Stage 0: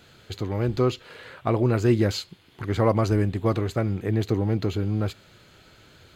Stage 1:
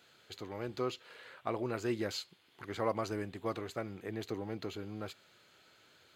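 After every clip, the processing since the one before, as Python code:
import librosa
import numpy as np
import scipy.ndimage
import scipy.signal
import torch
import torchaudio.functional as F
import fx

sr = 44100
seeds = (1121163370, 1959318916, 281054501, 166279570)

y = fx.highpass(x, sr, hz=510.0, slope=6)
y = y * 10.0 ** (-8.5 / 20.0)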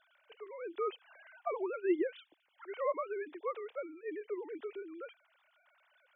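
y = fx.sine_speech(x, sr)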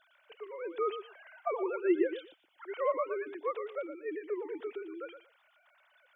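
y = fx.echo_feedback(x, sr, ms=117, feedback_pct=16, wet_db=-10.0)
y = y * 10.0 ** (3.0 / 20.0)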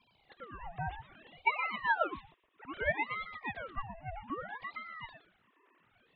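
y = fx.cabinet(x, sr, low_hz=310.0, low_slope=12, high_hz=2500.0, hz=(490.0, 710.0, 1200.0, 1700.0), db=(-8, 9, -7, -5))
y = fx.ring_lfo(y, sr, carrier_hz=1000.0, swing_pct=70, hz=0.62)
y = y * 10.0 ** (3.0 / 20.0)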